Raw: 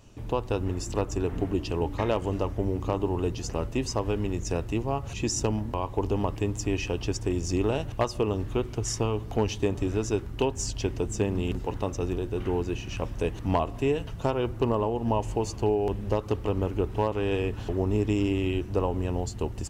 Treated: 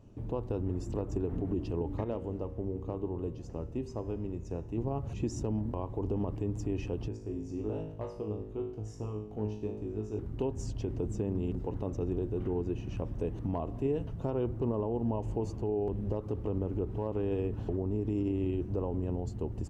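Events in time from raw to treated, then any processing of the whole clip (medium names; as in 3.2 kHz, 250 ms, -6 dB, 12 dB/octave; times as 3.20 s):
2.04–4.78 s: feedback comb 78 Hz, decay 1 s
7.08–10.19 s: feedback comb 53 Hz, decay 0.6 s, mix 90%
whole clip: tilt shelf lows +10 dB, about 930 Hz; peak limiter -14.5 dBFS; bass shelf 81 Hz -8 dB; trim -7.5 dB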